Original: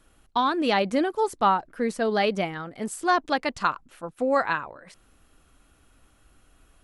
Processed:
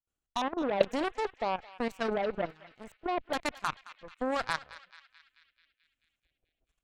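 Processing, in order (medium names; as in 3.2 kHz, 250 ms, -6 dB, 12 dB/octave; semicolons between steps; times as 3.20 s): LFO low-pass square 1.2 Hz 600–7400 Hz; gate with hold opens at -49 dBFS; Chebyshev shaper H 7 -18 dB, 8 -24 dB, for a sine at -8.5 dBFS; level held to a coarse grid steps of 15 dB; on a send: band-passed feedback delay 218 ms, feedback 67%, band-pass 2.8 kHz, level -14 dB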